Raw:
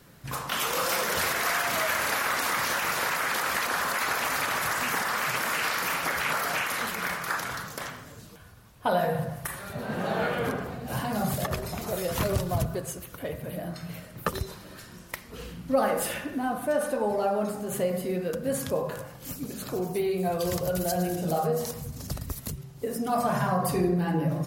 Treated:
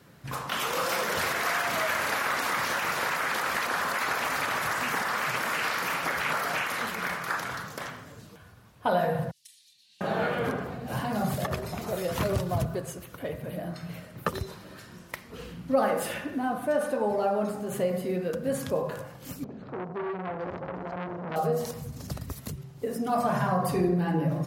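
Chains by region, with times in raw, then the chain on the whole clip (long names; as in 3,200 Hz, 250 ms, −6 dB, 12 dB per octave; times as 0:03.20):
0:09.31–0:10.01: inverse Chebyshev high-pass filter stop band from 1,500 Hz, stop band 50 dB + high-frequency loss of the air 64 metres
0:19.44–0:21.36: head-to-tape spacing loss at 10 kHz 44 dB + saturating transformer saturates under 1,400 Hz
whole clip: high-pass filter 71 Hz; high-shelf EQ 5,400 Hz −7 dB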